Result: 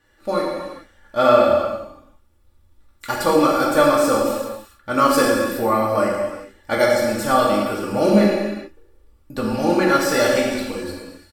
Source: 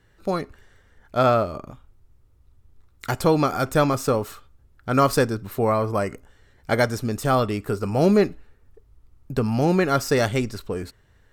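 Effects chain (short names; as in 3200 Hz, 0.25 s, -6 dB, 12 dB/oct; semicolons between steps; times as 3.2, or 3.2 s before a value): low shelf 200 Hz -8.5 dB; notch 6500 Hz, Q 15; comb 3.5 ms, depth 75%; non-linear reverb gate 0.46 s falling, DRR -4 dB; gain -1.5 dB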